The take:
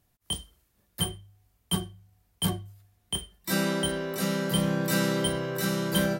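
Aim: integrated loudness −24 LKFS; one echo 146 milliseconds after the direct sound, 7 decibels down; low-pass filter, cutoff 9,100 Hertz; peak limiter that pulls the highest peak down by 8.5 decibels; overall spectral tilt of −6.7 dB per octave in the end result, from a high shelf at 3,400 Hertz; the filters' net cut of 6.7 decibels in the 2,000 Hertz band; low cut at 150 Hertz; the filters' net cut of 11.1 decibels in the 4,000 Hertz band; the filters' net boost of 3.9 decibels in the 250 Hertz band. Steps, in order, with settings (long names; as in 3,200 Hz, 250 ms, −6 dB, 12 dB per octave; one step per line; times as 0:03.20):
high-pass filter 150 Hz
low-pass filter 9,100 Hz
parametric band 250 Hz +7.5 dB
parametric band 2,000 Hz −6 dB
high-shelf EQ 3,400 Hz −8 dB
parametric band 4,000 Hz −7.5 dB
brickwall limiter −21.5 dBFS
single-tap delay 146 ms −7 dB
level +7 dB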